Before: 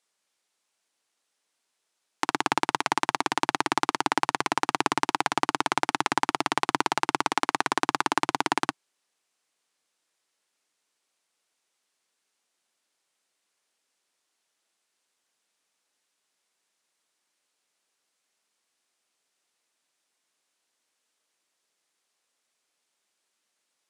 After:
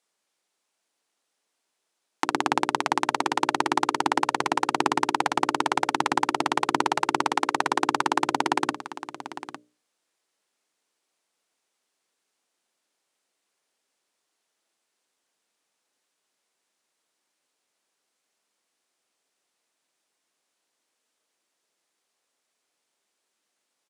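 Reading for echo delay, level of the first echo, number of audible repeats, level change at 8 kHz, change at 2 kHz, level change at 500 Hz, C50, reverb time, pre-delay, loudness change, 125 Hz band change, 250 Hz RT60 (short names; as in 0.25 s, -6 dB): 0.855 s, -13.5 dB, 1, -1.0 dB, 0.0 dB, +3.0 dB, none, none, none, +1.5 dB, +0.5 dB, none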